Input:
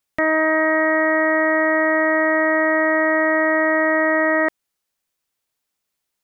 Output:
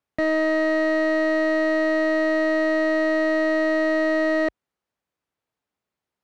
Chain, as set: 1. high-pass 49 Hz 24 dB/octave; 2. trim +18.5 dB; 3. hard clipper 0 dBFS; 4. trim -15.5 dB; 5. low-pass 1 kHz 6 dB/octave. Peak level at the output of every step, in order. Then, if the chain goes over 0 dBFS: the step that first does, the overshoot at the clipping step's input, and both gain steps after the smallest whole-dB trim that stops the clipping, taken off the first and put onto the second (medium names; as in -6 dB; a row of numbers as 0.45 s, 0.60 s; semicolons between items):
-8.5 dBFS, +10.0 dBFS, 0.0 dBFS, -15.5 dBFS, -16.0 dBFS; step 2, 10.0 dB; step 2 +8.5 dB, step 4 -5.5 dB